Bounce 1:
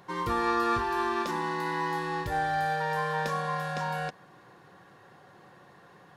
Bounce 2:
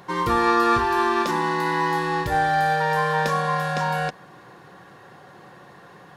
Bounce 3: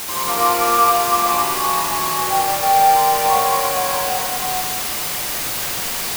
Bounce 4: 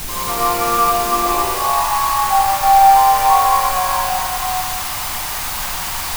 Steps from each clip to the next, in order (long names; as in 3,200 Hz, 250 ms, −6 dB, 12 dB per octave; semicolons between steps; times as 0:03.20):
mains-hum notches 50/100 Hz; level +8 dB
formant filter a; bit-depth reduction 6 bits, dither triangular; convolution reverb RT60 1.9 s, pre-delay 74 ms, DRR −5 dB; level +8 dB
high-pass filter sweep 64 Hz → 890 Hz, 0:00.33–0:01.93; background noise brown −30 dBFS; level −1 dB